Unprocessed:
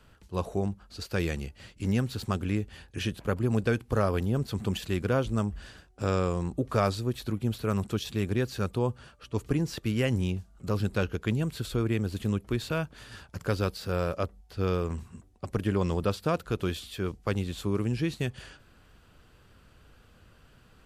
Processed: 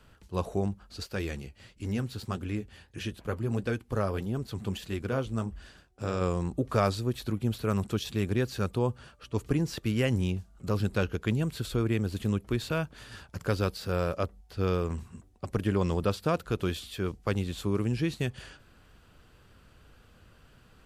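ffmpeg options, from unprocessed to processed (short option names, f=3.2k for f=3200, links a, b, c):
-filter_complex "[0:a]asplit=3[a][b][c];[a]afade=t=out:st=1.04:d=0.02[d];[b]flanger=delay=2.7:depth=7.3:regen=-55:speed=1.6:shape=sinusoidal,afade=t=in:st=1.04:d=0.02,afade=t=out:st=6.2:d=0.02[e];[c]afade=t=in:st=6.2:d=0.02[f];[d][e][f]amix=inputs=3:normalize=0"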